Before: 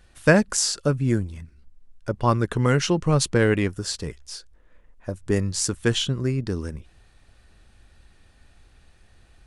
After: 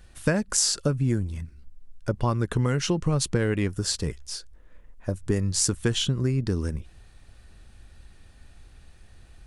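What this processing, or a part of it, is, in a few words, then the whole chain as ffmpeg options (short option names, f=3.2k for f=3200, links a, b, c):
ASMR close-microphone chain: -af "lowshelf=f=240:g=5,acompressor=threshold=-20dB:ratio=6,highshelf=f=6.3k:g=4.5"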